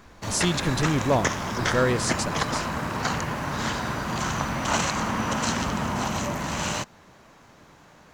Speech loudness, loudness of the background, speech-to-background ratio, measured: −26.5 LKFS, −27.5 LKFS, 1.0 dB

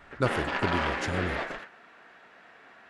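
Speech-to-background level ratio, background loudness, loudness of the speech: −2.0 dB, −31.0 LKFS, −33.0 LKFS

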